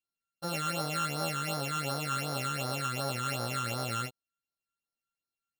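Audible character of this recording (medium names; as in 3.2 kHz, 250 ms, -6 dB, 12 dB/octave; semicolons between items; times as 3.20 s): a buzz of ramps at a fixed pitch in blocks of 32 samples; phasing stages 8, 2.7 Hz, lowest notch 640–2600 Hz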